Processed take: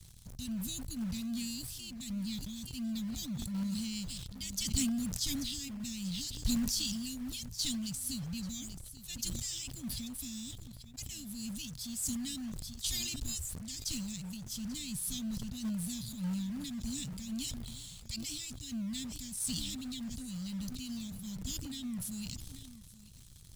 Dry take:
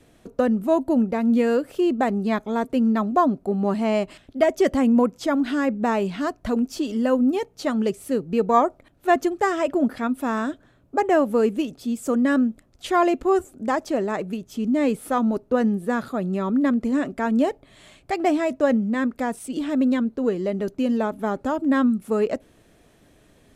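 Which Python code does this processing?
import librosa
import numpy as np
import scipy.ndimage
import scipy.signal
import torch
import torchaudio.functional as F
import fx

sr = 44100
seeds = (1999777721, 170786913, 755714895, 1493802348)

p1 = scipy.signal.sosfilt(scipy.signal.cheby2(4, 60, [370.0, 1500.0], 'bandstop', fs=sr, output='sos'), x)
p2 = fx.quant_companded(p1, sr, bits=4)
p3 = p1 + (p2 * librosa.db_to_amplitude(-6.0))
p4 = p3 + 10.0 ** (-18.5 / 20.0) * np.pad(p3, (int(837 * sr / 1000.0), 0))[:len(p3)]
y = fx.sustainer(p4, sr, db_per_s=22.0)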